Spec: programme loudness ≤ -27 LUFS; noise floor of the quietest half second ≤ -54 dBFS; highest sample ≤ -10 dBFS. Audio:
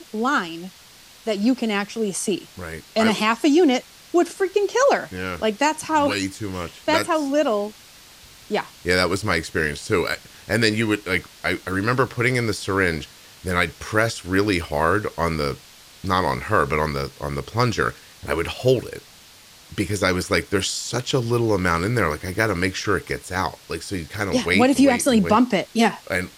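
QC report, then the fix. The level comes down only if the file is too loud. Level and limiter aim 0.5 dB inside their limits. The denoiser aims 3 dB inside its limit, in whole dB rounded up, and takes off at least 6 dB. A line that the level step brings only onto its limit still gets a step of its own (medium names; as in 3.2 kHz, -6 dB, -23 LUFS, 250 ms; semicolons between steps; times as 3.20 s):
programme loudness -22.0 LUFS: fail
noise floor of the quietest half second -48 dBFS: fail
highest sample -4.5 dBFS: fail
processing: noise reduction 6 dB, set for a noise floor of -48 dBFS; trim -5.5 dB; peak limiter -10.5 dBFS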